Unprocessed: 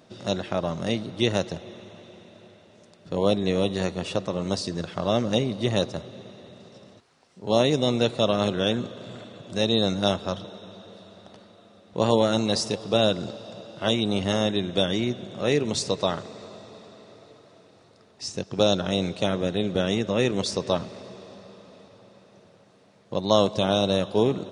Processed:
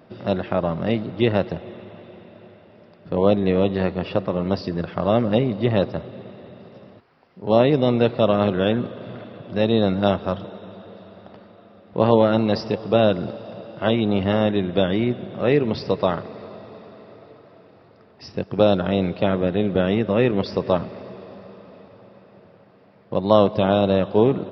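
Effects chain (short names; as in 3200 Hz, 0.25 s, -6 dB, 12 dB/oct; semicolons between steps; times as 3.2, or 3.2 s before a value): bell 4000 Hz -12 dB 0.83 oct; downsampling 11025 Hz; gain +5 dB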